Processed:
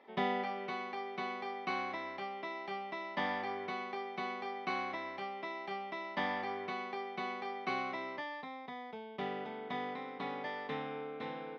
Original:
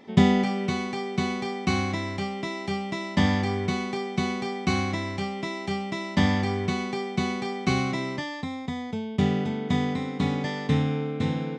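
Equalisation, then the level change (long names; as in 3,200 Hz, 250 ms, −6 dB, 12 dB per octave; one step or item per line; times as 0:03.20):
moving average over 6 samples
high-pass filter 620 Hz 12 dB per octave
high-shelf EQ 2,200 Hz −9 dB
−3.0 dB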